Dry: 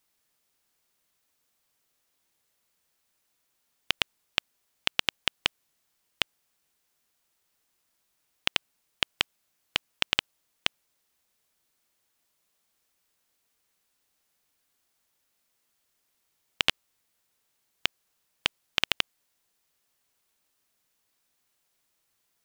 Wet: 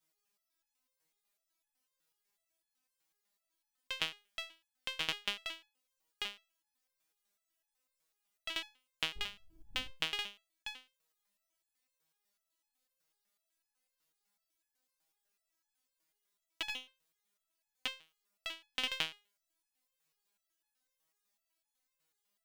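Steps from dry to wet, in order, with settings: 9.15–9.9 wind noise 110 Hz -36 dBFS; stepped resonator 8 Hz 160–840 Hz; gain +5 dB

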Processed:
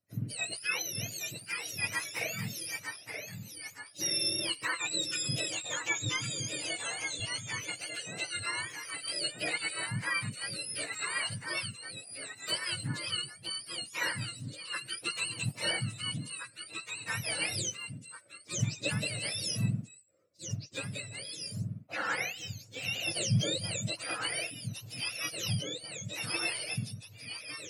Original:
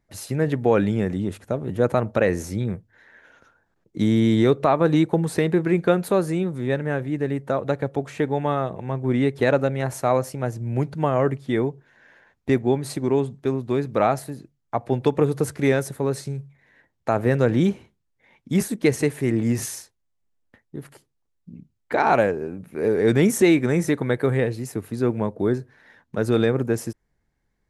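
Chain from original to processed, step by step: spectrum mirrored in octaves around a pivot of 1100 Hz; bell 830 Hz -8.5 dB 0.43 oct; notch 3400 Hz, Q 7; echoes that change speed 0.797 s, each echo -1 st, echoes 2, each echo -6 dB; 6.53–7.2 three-band squash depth 70%; gain -9 dB

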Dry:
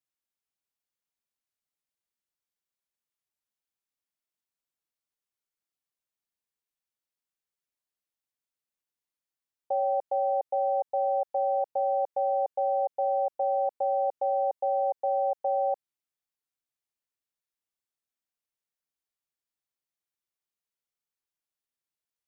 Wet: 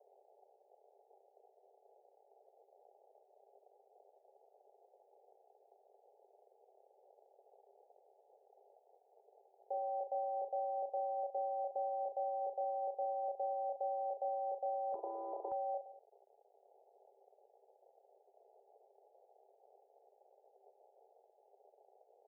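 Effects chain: upward compressor, threshold -30 dBFS; overloaded stage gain 35 dB; reverse bouncing-ball echo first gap 30 ms, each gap 1.25×, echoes 5; crackle 130/s -34 dBFS; Chebyshev band-pass 390–830 Hz, order 5; 14.94–15.52 spectral compressor 4:1

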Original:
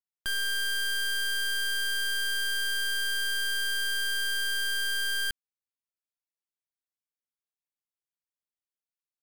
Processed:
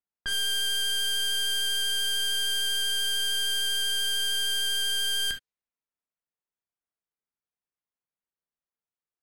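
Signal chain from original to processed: non-linear reverb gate 90 ms flat, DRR 4.5 dB; vibrato 13 Hz 11 cents; low-pass opened by the level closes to 1800 Hz, open at -27 dBFS; gain +1.5 dB

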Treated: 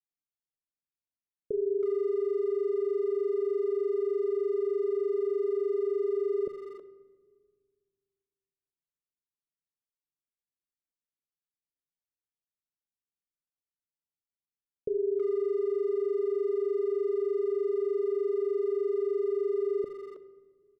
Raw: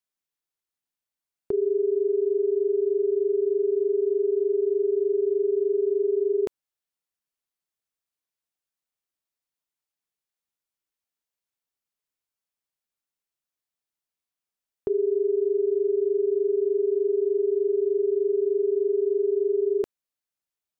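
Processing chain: low-pass opened by the level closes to 320 Hz, open at -21.5 dBFS; steep low-pass 580 Hz 72 dB/oct; speakerphone echo 0.32 s, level -9 dB; shoebox room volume 2000 m³, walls mixed, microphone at 0.5 m; gain -5 dB

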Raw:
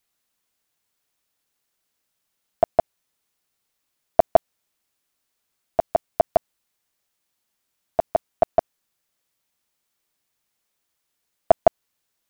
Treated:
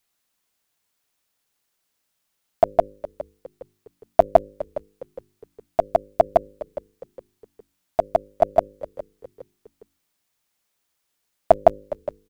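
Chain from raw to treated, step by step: de-hum 51.01 Hz, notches 11; in parallel at -11.5 dB: Schmitt trigger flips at -26.5 dBFS; on the sum: frequency-shifting echo 0.411 s, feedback 39%, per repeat -77 Hz, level -16 dB; gain +1.5 dB

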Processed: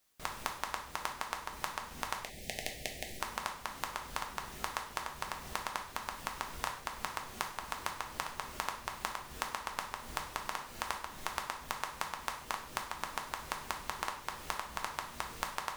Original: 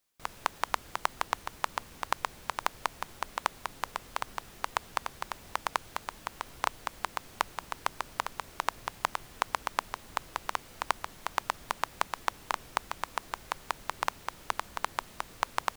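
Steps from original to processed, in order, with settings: 2.18–3.2 Chebyshev band-stop 710–1900 Hz, order 3; compressor, threshold -37 dBFS, peak gain reduction 15.5 dB; non-linear reverb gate 0.18 s falling, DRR 2 dB; gain +3 dB

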